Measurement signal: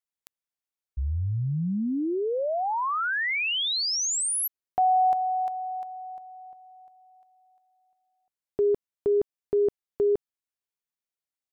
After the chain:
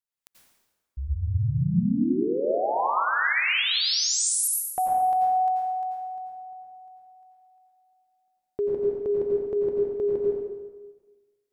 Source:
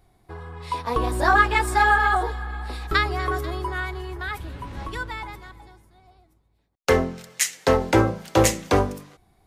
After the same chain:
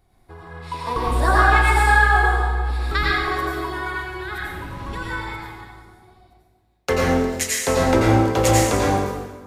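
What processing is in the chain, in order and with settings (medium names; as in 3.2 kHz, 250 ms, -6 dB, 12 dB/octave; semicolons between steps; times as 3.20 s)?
plate-style reverb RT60 1.3 s, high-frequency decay 0.8×, pre-delay 75 ms, DRR -4.5 dB; trim -3 dB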